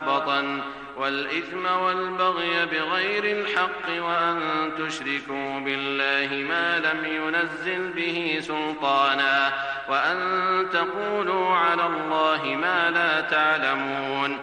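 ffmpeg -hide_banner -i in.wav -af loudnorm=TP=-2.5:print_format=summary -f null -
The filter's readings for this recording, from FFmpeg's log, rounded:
Input Integrated:    -23.4 LUFS
Input True Peak:      -8.7 dBTP
Input LRA:             2.5 LU
Input Threshold:     -33.4 LUFS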